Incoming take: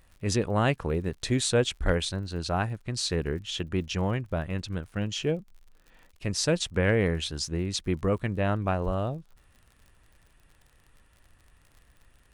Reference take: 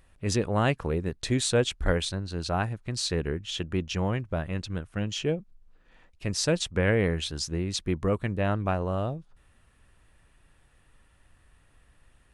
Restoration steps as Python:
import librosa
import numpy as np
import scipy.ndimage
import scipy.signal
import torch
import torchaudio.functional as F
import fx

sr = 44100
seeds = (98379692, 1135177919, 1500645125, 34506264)

y = fx.fix_declip(x, sr, threshold_db=-12.0)
y = fx.fix_declick_ar(y, sr, threshold=6.5)
y = fx.highpass(y, sr, hz=140.0, slope=24, at=(8.85, 8.97), fade=0.02)